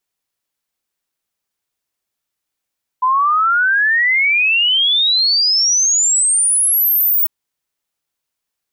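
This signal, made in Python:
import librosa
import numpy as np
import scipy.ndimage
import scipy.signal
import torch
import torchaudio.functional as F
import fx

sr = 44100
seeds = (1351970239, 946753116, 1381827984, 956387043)

y = fx.ess(sr, length_s=4.25, from_hz=1000.0, to_hz=16000.0, level_db=-11.0)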